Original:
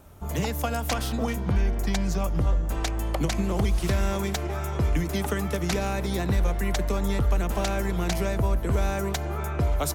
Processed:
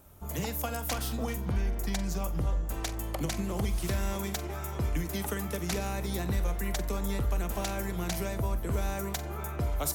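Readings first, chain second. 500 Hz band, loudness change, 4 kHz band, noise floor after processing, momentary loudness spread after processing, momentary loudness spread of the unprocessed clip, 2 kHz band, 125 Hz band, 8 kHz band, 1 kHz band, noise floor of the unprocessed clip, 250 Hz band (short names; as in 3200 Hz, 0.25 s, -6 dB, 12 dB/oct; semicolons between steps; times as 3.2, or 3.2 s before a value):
-7.0 dB, -6.0 dB, -5.0 dB, -37 dBFS, 3 LU, 3 LU, -6.0 dB, -6.5 dB, -2.0 dB, -6.0 dB, -30 dBFS, -6.0 dB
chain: high shelf 9200 Hz +11.5 dB; flutter echo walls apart 7.7 m, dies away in 0.21 s; gain -6.5 dB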